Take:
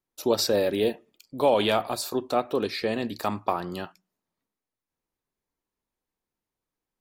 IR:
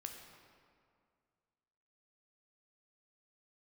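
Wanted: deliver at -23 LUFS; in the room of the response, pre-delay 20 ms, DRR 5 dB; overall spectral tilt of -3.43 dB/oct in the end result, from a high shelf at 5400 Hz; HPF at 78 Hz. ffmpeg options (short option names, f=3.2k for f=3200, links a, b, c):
-filter_complex "[0:a]highpass=78,highshelf=f=5.4k:g=-6,asplit=2[a][b];[1:a]atrim=start_sample=2205,adelay=20[c];[b][c]afir=irnorm=-1:irlink=0,volume=-1.5dB[d];[a][d]amix=inputs=2:normalize=0,volume=2.5dB"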